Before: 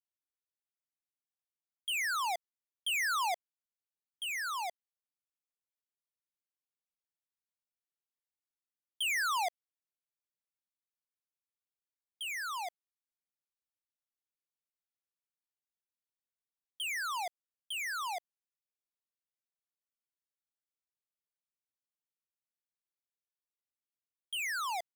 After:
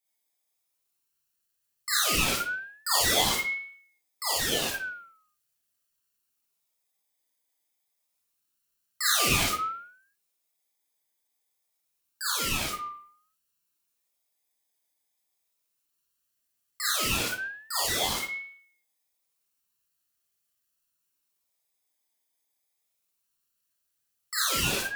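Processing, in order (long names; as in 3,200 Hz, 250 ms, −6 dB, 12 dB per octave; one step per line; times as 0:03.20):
lower of the sound and its delayed copy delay 0.7 ms
high-shelf EQ 5,000 Hz +11.5 dB
in parallel at 0 dB: brickwall limiter −33.5 dBFS, peak gain reduction 14.5 dB
on the sum: convolution reverb RT60 0.55 s, pre-delay 5 ms, DRR −8 dB
ring modulator whose carrier an LFO sweeps 1,700 Hz, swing 30%, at 0.27 Hz
level −1 dB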